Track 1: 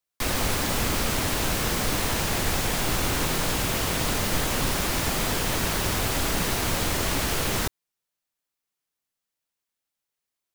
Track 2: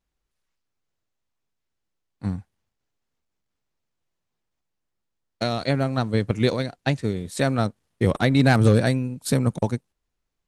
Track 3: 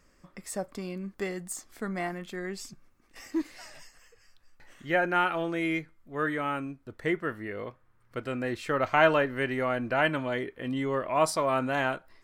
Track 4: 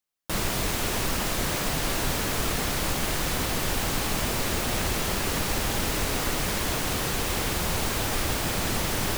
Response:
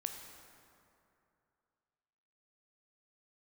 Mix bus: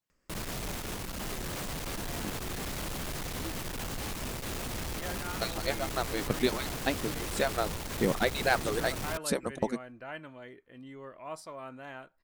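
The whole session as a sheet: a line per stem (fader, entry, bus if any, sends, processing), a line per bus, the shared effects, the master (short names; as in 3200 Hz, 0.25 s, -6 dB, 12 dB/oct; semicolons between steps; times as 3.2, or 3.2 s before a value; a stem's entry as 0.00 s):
off
-4.5 dB, 0.00 s, no send, median-filter separation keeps percussive
-16.5 dB, 0.10 s, no send, upward compressor, threshold -50 dBFS
-4.5 dB, 0.00 s, no send, low shelf 430 Hz +4.5 dB; tube stage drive 26 dB, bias 0.5; hard clip -29.5 dBFS, distortion -13 dB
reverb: off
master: dry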